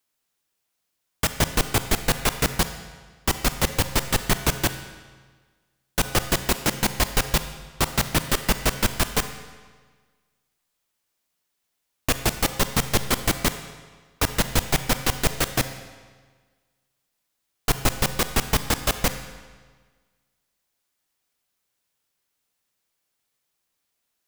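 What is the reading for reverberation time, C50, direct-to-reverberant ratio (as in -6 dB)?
1.5 s, 10.5 dB, 9.5 dB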